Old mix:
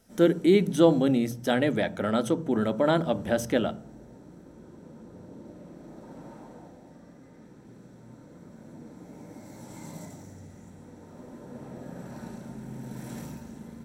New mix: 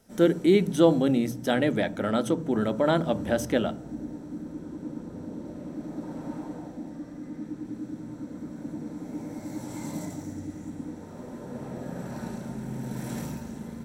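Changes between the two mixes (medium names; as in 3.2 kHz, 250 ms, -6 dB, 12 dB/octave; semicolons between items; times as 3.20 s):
first sound +5.0 dB; second sound: unmuted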